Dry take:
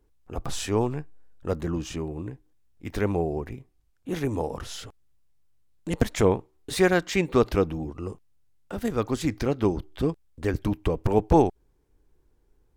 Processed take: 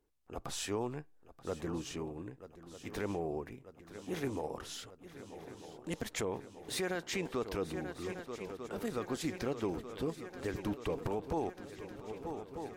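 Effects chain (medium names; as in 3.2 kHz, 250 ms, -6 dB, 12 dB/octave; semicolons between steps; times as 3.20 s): bass shelf 150 Hz -11 dB; on a send: shuffle delay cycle 1242 ms, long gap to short 3:1, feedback 71%, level -16 dB; on the sum: peak limiter -19.5 dBFS, peak gain reduction 11 dB; trim -6 dB; MP3 80 kbps 44.1 kHz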